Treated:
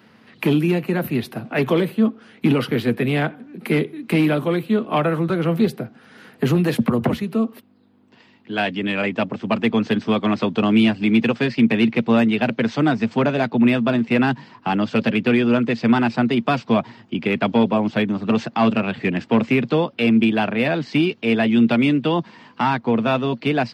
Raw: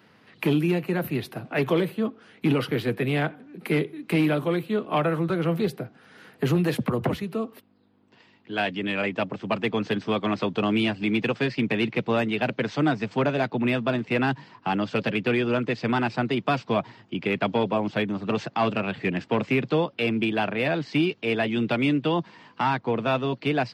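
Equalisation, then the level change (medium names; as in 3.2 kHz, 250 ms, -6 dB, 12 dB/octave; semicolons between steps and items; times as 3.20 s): peaking EQ 230 Hz +9 dB 0.22 oct; +4.0 dB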